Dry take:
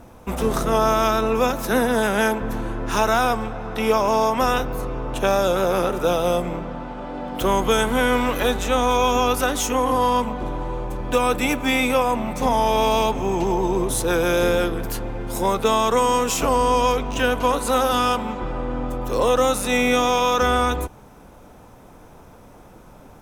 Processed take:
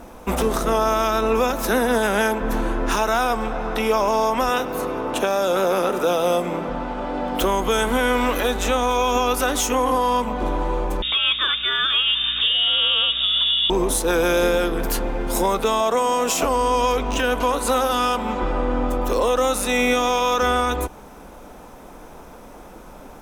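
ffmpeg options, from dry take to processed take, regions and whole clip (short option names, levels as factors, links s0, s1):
-filter_complex "[0:a]asettb=1/sr,asplit=3[s0][s1][s2];[s0]atrim=end=4.494[s3];[s1]atrim=start=4.49:end=6.69,asetpts=PTS-STARTPTS,afade=t=in:d=0.004:c=qsin,afade=t=out:st=2.196:d=0.004:c=qsin,highpass=120,aecho=1:1:100|200|300|400:0.075|0.0442|0.0261|0.0154,atrim=end_sample=97020[s4];[s2]atrim=start=6.686[s5];[s3][s4]acrossfade=d=0.004:c1=hsin:c2=qsin[s6];[s6][s5]acrossfade=d=0.004:c1=qsin:c2=hsin,asettb=1/sr,asplit=3[s7][s8][s9];[s7]atrim=end=11.024[s10];[s8]atrim=start=11.02:end=13.7,asetpts=PTS-STARTPTS,afade=t=in:d=0.004:c=qsin,afade=t=out:st=2.676:d=0.004:c=qsin,highpass=67,lowpass=f=3200:t=q:w=0.5098,lowpass=f=3200:t=q:w=0.6013,lowpass=f=3200:t=q:w=0.9,lowpass=f=3200:t=q:w=2.563,afreqshift=-3800,aeval=exprs='val(0)+0.00708*(sin(2*PI*60*n/s)+sin(2*PI*2*60*n/s)/2+sin(2*PI*3*60*n/s)/3+sin(2*PI*4*60*n/s)/4+sin(2*PI*5*60*n/s)/5)':c=same[s11];[s9]atrim=start=13.696[s12];[s10][s11]acrossfade=d=0.004:c1=hsin:c2=qsin[s13];[s13][s12]acrossfade=d=0.004:c1=qsin:c2=hsin,asettb=1/sr,asplit=3[s14][s15][s16];[s14]atrim=end=15.804[s17];[s15]atrim=start=15.8:end=16.44,asetpts=PTS-STARTPTS,afade=t=in:d=0.004:c=qsin,afade=t=out:st=0.636:d=0.004:c=qsin,highpass=77,equalizer=f=660:w=4.3:g=8.5[s18];[s16]atrim=start=16.436[s19];[s17][s18]acrossfade=d=0.004:c1=hsin:c2=qsin[s20];[s20][s19]acrossfade=d=0.004:c1=qsin:c2=hsin,equalizer=f=110:t=o:w=0.84:g=-13.5,alimiter=limit=0.15:level=0:latency=1:release=272,acontrast=44"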